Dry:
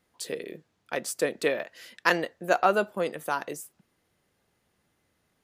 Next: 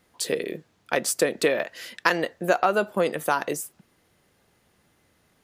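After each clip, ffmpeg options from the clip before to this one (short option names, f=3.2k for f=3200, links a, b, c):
-af "acompressor=threshold=-25dB:ratio=6,volume=8dB"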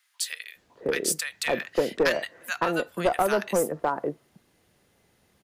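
-filter_complex "[0:a]acrossover=split=1300[a][b];[a]adelay=560[c];[c][b]amix=inputs=2:normalize=0,acrossover=split=220|5000[d][e][f];[e]aeval=exprs='clip(val(0),-1,0.106)':c=same[g];[d][g][f]amix=inputs=3:normalize=0"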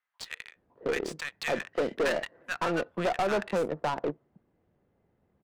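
-af "volume=24dB,asoftclip=hard,volume=-24dB,adynamicsmooth=sensitivity=4.5:basefreq=1.1k,aeval=exprs='0.0631*(cos(1*acos(clip(val(0)/0.0631,-1,1)))-cos(1*PI/2))+0.00501*(cos(2*acos(clip(val(0)/0.0631,-1,1)))-cos(2*PI/2))+0.00708*(cos(3*acos(clip(val(0)/0.0631,-1,1)))-cos(3*PI/2))':c=same"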